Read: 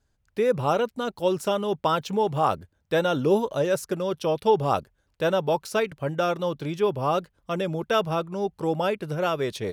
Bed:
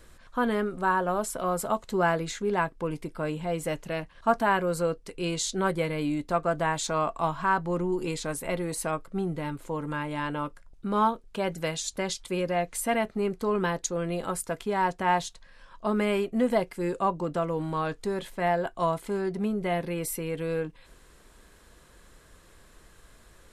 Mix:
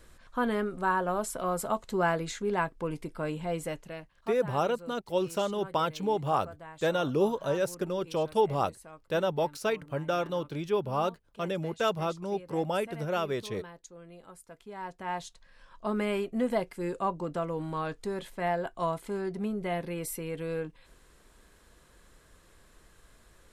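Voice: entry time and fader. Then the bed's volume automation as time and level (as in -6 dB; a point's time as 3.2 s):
3.90 s, -5.0 dB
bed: 3.57 s -2.5 dB
4.47 s -19.5 dB
14.41 s -19.5 dB
15.58 s -4 dB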